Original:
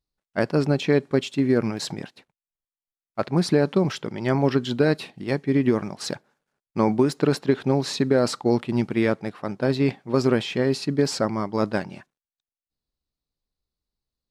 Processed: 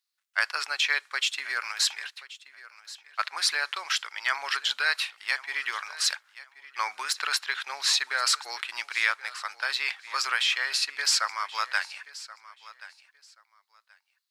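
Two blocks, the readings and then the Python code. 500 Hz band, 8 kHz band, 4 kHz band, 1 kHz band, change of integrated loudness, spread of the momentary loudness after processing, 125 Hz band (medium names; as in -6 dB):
-25.5 dB, +7.5 dB, +7.5 dB, -1.0 dB, -3.5 dB, 17 LU, under -40 dB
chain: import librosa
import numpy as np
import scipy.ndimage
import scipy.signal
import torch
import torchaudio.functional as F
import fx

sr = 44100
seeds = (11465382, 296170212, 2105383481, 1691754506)

p1 = scipy.signal.sosfilt(scipy.signal.butter(4, 1300.0, 'highpass', fs=sr, output='sos'), x)
p2 = p1 + fx.echo_feedback(p1, sr, ms=1079, feedback_pct=20, wet_db=-18.0, dry=0)
y = F.gain(torch.from_numpy(p2), 7.5).numpy()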